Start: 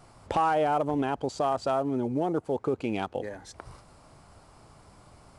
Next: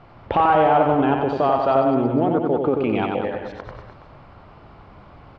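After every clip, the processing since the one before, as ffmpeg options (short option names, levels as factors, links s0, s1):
-af "lowpass=f=3300:w=0.5412,lowpass=f=3300:w=1.3066,aecho=1:1:90|189|297.9|417.7|549.5:0.631|0.398|0.251|0.158|0.1,volume=2.24"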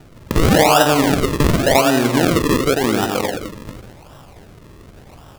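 -af "acrusher=samples=40:mix=1:aa=0.000001:lfo=1:lforange=40:lforate=0.9,volume=1.5"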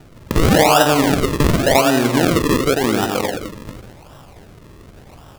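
-af anull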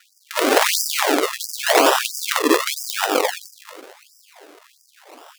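-af "bandreject=f=365.4:t=h:w=4,bandreject=f=730.8:t=h:w=4,bandreject=f=1096.2:t=h:w=4,aeval=exprs='(mod(2.66*val(0)+1,2)-1)/2.66':c=same,afftfilt=real='re*gte(b*sr/1024,250*pow(4800/250,0.5+0.5*sin(2*PI*1.5*pts/sr)))':imag='im*gte(b*sr/1024,250*pow(4800/250,0.5+0.5*sin(2*PI*1.5*pts/sr)))':win_size=1024:overlap=0.75,volume=1.33"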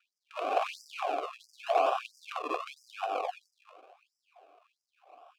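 -filter_complex "[0:a]asplit=3[s0][s1][s2];[s0]bandpass=f=730:t=q:w=8,volume=1[s3];[s1]bandpass=f=1090:t=q:w=8,volume=0.501[s4];[s2]bandpass=f=2440:t=q:w=8,volume=0.355[s5];[s3][s4][s5]amix=inputs=3:normalize=0,volume=0.631"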